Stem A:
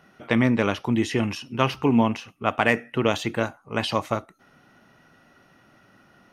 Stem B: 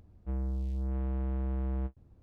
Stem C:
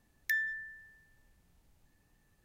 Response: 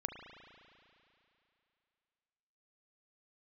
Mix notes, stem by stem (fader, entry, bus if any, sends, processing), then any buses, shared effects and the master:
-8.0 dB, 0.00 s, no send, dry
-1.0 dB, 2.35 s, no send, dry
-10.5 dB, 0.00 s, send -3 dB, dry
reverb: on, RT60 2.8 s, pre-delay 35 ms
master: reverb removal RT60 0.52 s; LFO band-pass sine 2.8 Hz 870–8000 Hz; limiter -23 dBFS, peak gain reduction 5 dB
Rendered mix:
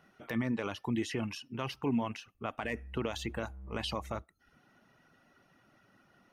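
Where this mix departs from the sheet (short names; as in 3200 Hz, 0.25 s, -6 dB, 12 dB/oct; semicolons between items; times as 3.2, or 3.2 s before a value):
stem B -1.0 dB -> -12.0 dB; stem C -10.5 dB -> -18.0 dB; master: missing LFO band-pass sine 2.8 Hz 870–8000 Hz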